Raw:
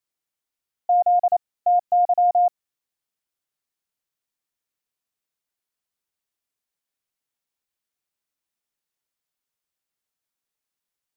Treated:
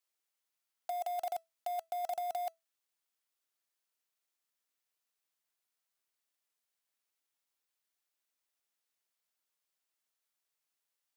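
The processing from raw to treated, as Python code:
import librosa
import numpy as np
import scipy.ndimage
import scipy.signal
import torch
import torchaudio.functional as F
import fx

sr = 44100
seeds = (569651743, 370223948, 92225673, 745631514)

y = fx.block_float(x, sr, bits=3)
y = fx.highpass(y, sr, hz=510.0, slope=6)
y = fx.over_compress(y, sr, threshold_db=-27.0, ratio=-1.0)
y = fx.comb_fb(y, sr, f0_hz=660.0, decay_s=0.2, harmonics='all', damping=0.0, mix_pct=40)
y = y * librosa.db_to_amplitude(-4.5)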